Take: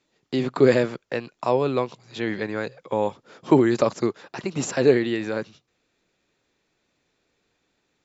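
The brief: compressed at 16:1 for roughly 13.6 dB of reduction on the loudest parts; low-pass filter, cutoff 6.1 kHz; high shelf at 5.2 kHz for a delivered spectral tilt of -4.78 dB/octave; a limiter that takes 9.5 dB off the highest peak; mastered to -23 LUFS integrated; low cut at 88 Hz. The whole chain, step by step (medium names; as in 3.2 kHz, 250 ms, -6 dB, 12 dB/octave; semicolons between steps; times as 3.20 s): high-pass 88 Hz; low-pass 6.1 kHz; treble shelf 5.2 kHz +5.5 dB; compression 16:1, threshold -24 dBFS; trim +10.5 dB; peak limiter -11 dBFS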